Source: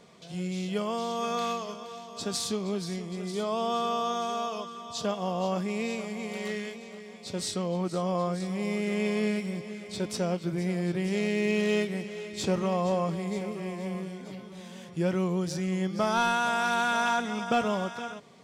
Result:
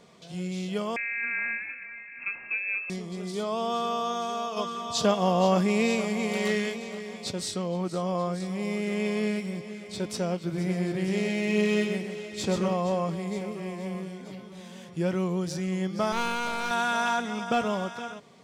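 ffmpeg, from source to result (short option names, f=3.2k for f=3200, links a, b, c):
-filter_complex "[0:a]asettb=1/sr,asplit=3[a][b][c];[a]atrim=end=0.964[d];[b]atrim=start=0.96:end=2.9,asetpts=PTS-STARTPTS,afade=t=in:d=0.004:c=qsin,afade=t=out:st=1.936:d=0.004:c=qsin,lowpass=f=2.4k:t=q:w=0.5098,lowpass=f=2.4k:t=q:w=0.6013,lowpass=f=2.4k:t=q:w=0.9,lowpass=f=2.4k:t=q:w=2.563,afreqshift=-2800[e];[c]atrim=start=2.896[f];[d][e]acrossfade=d=0.004:c1=hsin:c2=qsin[g];[g][f]acrossfade=d=0.004:c1=qsin:c2=hsin,asplit=3[h][i][j];[h]afade=t=out:st=4.56:d=0.02[k];[i]acontrast=83,afade=t=in:st=4.56:d=0.02,afade=t=out:st=7.3:d=0.02[l];[j]afade=t=in:st=7.3:d=0.02[m];[k][l][m]amix=inputs=3:normalize=0,asettb=1/sr,asplit=3[n][o][p];[n]atrim=end=10.374[q];[o]atrim=start=10.37:end=12.74,asetpts=PTS-STARTPTS,afade=t=in:d=0.004:c=qsin,afade=t=out:st=2.366:d=0.004:c=qsin,aecho=1:1:128:0.531,atrim=end_sample=104517[r];[p]atrim=start=12.736[s];[q][r]acrossfade=d=0.004:c1=hsin:c2=qsin[t];[t][s]acrossfade=d=0.004:c1=qsin:c2=hsin,asettb=1/sr,asplit=3[u][v][w];[u]atrim=end=16.124[x];[v]atrim=start=16.12:end=16.71,asetpts=PTS-STARTPTS,afade=t=in:d=0.004:c=qsin,afade=t=out:st=0.586:d=0.004:c=qsin,aeval=exprs='clip(val(0),-1,0.0168)':c=same[y];[w]atrim=start=16.706[z];[x][y]acrossfade=d=0.004:c1=hsin:c2=qsin[aa];[aa][z]acrossfade=d=0.004:c1=qsin:c2=hsin"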